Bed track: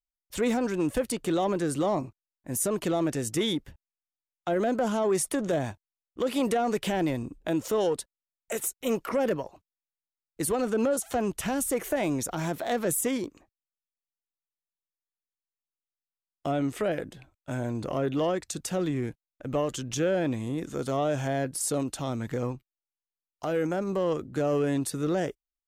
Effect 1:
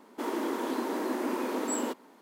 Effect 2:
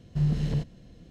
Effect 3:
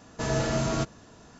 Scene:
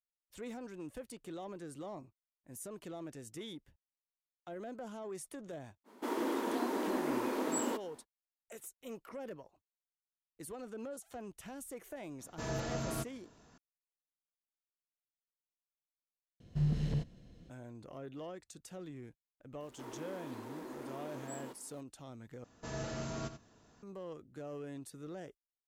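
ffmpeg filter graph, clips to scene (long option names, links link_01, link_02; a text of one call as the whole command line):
ffmpeg -i bed.wav -i cue0.wav -i cue1.wav -i cue2.wav -filter_complex "[1:a]asplit=2[link_01][link_02];[3:a]asplit=2[link_03][link_04];[0:a]volume=-18.5dB[link_05];[link_02]aeval=exprs='val(0)+0.5*0.00562*sgn(val(0))':channel_layout=same[link_06];[link_04]aecho=1:1:86:0.299[link_07];[link_05]asplit=3[link_08][link_09][link_10];[link_08]atrim=end=16.404[link_11];[2:a]atrim=end=1.1,asetpts=PTS-STARTPTS,volume=-6.5dB[link_12];[link_09]atrim=start=17.496:end=22.444[link_13];[link_07]atrim=end=1.39,asetpts=PTS-STARTPTS,volume=-13.5dB[link_14];[link_10]atrim=start=23.826[link_15];[link_01]atrim=end=2.21,asetpts=PTS-STARTPTS,volume=-3.5dB,afade=type=in:duration=0.05,afade=type=out:start_time=2.16:duration=0.05,adelay=5840[link_16];[link_03]atrim=end=1.39,asetpts=PTS-STARTPTS,volume=-11dB,afade=type=in:duration=0.004:curve=hsin,afade=type=out:start_time=1.386:duration=0.004:curve=hsin,adelay=12190[link_17];[link_06]atrim=end=2.21,asetpts=PTS-STARTPTS,volume=-16dB,afade=type=in:duration=0.004:curve=hsin,afade=type=out:start_time=2.206:duration=0.004:curve=hsin,adelay=19600[link_18];[link_11][link_12]acrossfade=duration=0.004:curve1=hsin:curve2=hsin[link_19];[link_19][link_13]acrossfade=duration=0.004:curve1=hsin:curve2=hsin[link_20];[link_20][link_14]acrossfade=duration=0.004:curve1=hsin:curve2=hsin[link_21];[link_21][link_15]acrossfade=duration=0.004:curve1=hsin:curve2=hsin[link_22];[link_22][link_16][link_17][link_18]amix=inputs=4:normalize=0" out.wav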